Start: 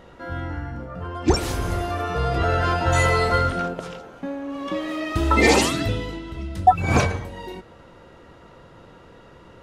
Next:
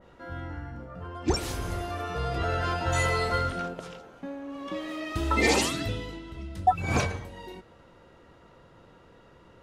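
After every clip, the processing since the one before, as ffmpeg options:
-af "adynamicequalizer=threshold=0.0224:dfrequency=2100:dqfactor=0.7:tfrequency=2100:tqfactor=0.7:attack=5:release=100:ratio=0.375:range=1.5:mode=boostabove:tftype=highshelf,volume=-7.5dB"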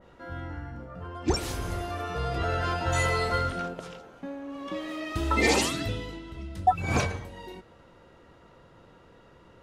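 -af anull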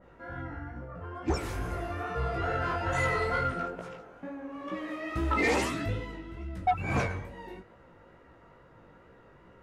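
-af "highshelf=f=2.7k:t=q:w=1.5:g=-6.5,flanger=delay=15:depth=5.8:speed=2.3,asoftclip=type=tanh:threshold=-20.5dB,volume=1.5dB"

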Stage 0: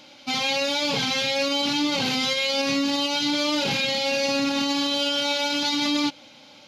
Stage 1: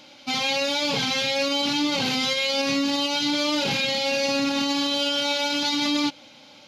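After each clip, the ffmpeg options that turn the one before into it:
-af anull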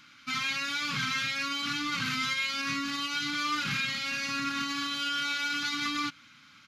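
-af "firequalizer=gain_entry='entry(150,0);entry(440,-19);entry(700,-28);entry(1200,8);entry(3000,-5);entry(4600,-6);entry(7600,-2)':delay=0.05:min_phase=1,volume=-3.5dB"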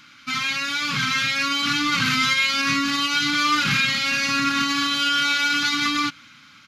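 -af "dynaudnorm=f=350:g=7:m=4dB,volume=6.5dB"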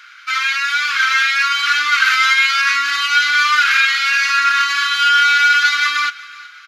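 -af "highpass=f=1.5k:t=q:w=3.2,aecho=1:1:373|746|1119:0.0944|0.033|0.0116,volume=2dB"

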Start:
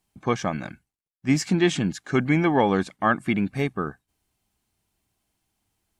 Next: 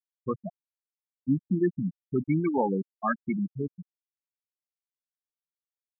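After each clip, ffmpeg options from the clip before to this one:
-af "afftfilt=real='re*gte(hypot(re,im),0.398)':imag='im*gte(hypot(re,im),0.398)':win_size=1024:overlap=0.75,volume=-4dB"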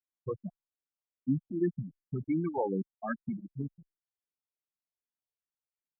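-filter_complex "[0:a]lowpass=f=1.1k:p=1,asplit=2[a][b];[b]acompressor=threshold=-32dB:ratio=6,volume=-1.5dB[c];[a][c]amix=inputs=2:normalize=0,asplit=2[d][e];[e]afreqshift=-2.6[f];[d][f]amix=inputs=2:normalize=1,volume=-4dB"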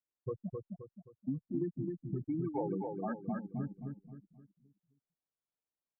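-af "lowpass=1.1k,acompressor=threshold=-34dB:ratio=4,aecho=1:1:263|526|789|1052|1315:0.631|0.24|0.0911|0.0346|0.0132"

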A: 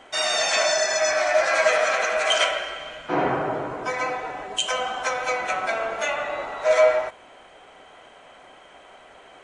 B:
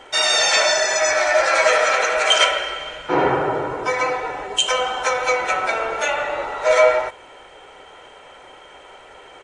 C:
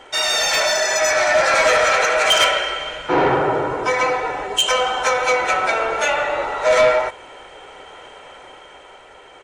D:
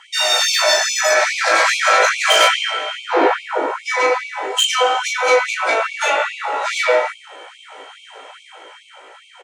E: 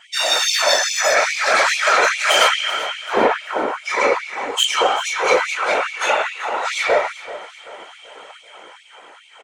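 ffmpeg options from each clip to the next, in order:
-af "aecho=1:1:2.2:0.45,volume=4.5dB"
-af "asoftclip=type=tanh:threshold=-12dB,dynaudnorm=f=110:g=17:m=3.5dB"
-af "aecho=1:1:18|36:0.631|0.668,afftfilt=real='re*gte(b*sr/1024,240*pow(2200/240,0.5+0.5*sin(2*PI*2.4*pts/sr)))':imag='im*gte(b*sr/1024,240*pow(2200/240,0.5+0.5*sin(2*PI*2.4*pts/sr)))':win_size=1024:overlap=0.75"
-af "afftfilt=real='hypot(re,im)*cos(2*PI*random(0))':imag='hypot(re,im)*sin(2*PI*random(1))':win_size=512:overlap=0.75,aecho=1:1:385|770|1155|1540:0.158|0.0713|0.0321|0.0144,volume=4.5dB"

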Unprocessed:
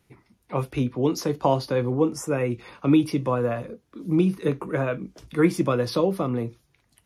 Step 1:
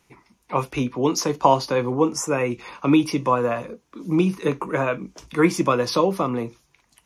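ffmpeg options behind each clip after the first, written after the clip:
-af "equalizer=f=100:t=o:w=0.67:g=-9,equalizer=f=1k:t=o:w=0.67:g=8,equalizer=f=2.5k:t=o:w=0.67:g=5,equalizer=f=6.3k:t=o:w=0.67:g=9,volume=1.5dB"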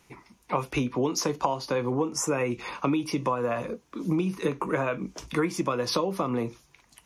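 -af "acompressor=threshold=-25dB:ratio=12,volume=2.5dB"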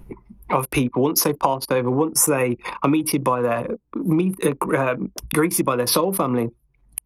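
-af "aexciter=amount=11:drive=3.1:freq=9.2k,anlmdn=6.31,acompressor=mode=upward:threshold=-28dB:ratio=2.5,volume=7dB"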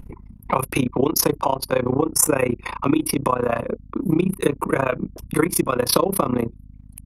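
-af "aeval=exprs='val(0)+0.00891*(sin(2*PI*50*n/s)+sin(2*PI*2*50*n/s)/2+sin(2*PI*3*50*n/s)/3+sin(2*PI*4*50*n/s)/4+sin(2*PI*5*50*n/s)/5)':c=same,tremolo=f=30:d=0.919,volume=3.5dB"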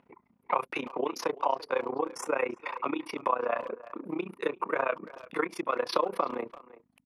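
-filter_complex "[0:a]highpass=510,lowpass=3k,asplit=2[a][b];[b]adelay=340,highpass=300,lowpass=3.4k,asoftclip=type=hard:threshold=-15.5dB,volume=-17dB[c];[a][c]amix=inputs=2:normalize=0,volume=-5.5dB"

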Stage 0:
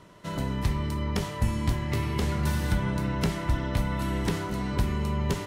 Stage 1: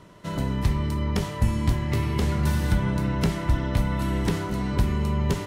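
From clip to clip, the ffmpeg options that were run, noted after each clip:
-af "lowshelf=f=410:g=3,volume=1dB"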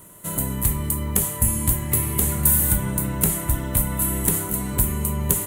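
-af "aexciter=amount=15.8:drive=8.4:freq=7.9k,volume=-1dB"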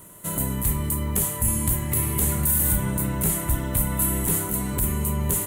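-af "alimiter=limit=-11dB:level=0:latency=1:release=18"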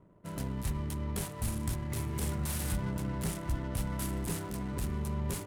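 -af "adynamicsmooth=sensitivity=7.5:basefreq=600,volume=-8.5dB"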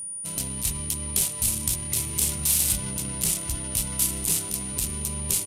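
-af "aresample=32000,aresample=44100,aexciter=amount=5.1:drive=5.5:freq=2.4k,aeval=exprs='val(0)+0.0251*sin(2*PI*9500*n/s)':c=same"

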